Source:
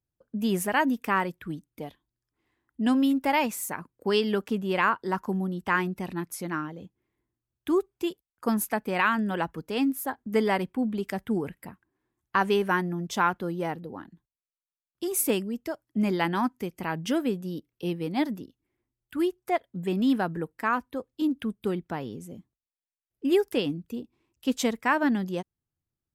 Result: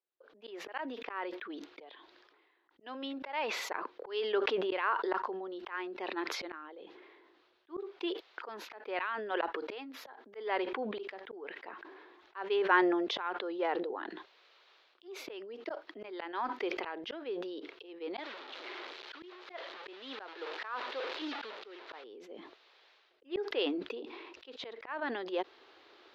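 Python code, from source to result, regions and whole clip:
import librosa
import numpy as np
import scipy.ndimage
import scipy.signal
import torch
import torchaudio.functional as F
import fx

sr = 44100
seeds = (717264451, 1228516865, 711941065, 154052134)

y = fx.chain(x, sr, fx.delta_mod(bps=64000, step_db=-32.0),
    fx.low_shelf(hz=360.0, db=-9.5),
    fx.notch(hz=720.0, q=20.0), at=(18.19, 22.04))
y = scipy.signal.sosfilt(scipy.signal.ellip(3, 1.0, 40, [390.0, 4000.0], 'bandpass', fs=sr, output='sos'), y)
y = fx.auto_swell(y, sr, attack_ms=405.0)
y = fx.sustainer(y, sr, db_per_s=31.0)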